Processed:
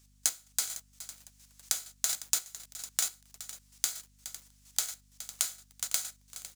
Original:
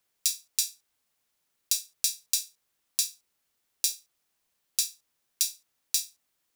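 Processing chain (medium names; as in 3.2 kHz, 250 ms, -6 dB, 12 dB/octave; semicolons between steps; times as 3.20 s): bit-reversed sample order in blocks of 128 samples; recorder AGC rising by 11 dB/s; high-pass 950 Hz 6 dB/octave; peaking EQ 6.7 kHz +13 dB 1.6 oct; on a send: delay 418 ms -21.5 dB; on the sum: square tremolo 4.3 Hz, depth 65%, duty 25%; modulation noise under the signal 17 dB; saturation -7 dBFS, distortion -13 dB; hum 50 Hz, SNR 35 dB; compression 10:1, threshold -29 dBFS, peak gain reduction 14.5 dB; bit-crushed delay 505 ms, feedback 35%, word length 7-bit, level -14.5 dB; trim +3.5 dB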